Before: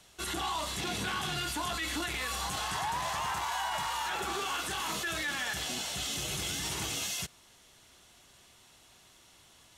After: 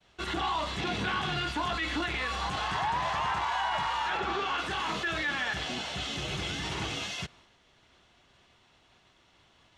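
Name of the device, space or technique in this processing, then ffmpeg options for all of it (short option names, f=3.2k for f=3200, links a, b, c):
hearing-loss simulation: -filter_complex "[0:a]asettb=1/sr,asplit=3[a][b][c];[a]atrim=end=4.174[d];[b]atrim=start=4.17:end=4.58,asetpts=PTS-STARTPTS,afade=t=in:d=0.004:c=qsin,afade=t=out:st=0.406:d=0.004:c=qsin,equalizer=f=10k:t=o:w=0.61:g=-14[e];[c]atrim=start=4.576[f];[d][e]acrossfade=d=0.004:c1=hsin:c2=qsin[g];[g][f]acrossfade=d=0.004:c1=qsin:c2=hsin,lowpass=3.4k,agate=range=-33dB:threshold=-57dB:ratio=3:detection=peak,volume=4dB"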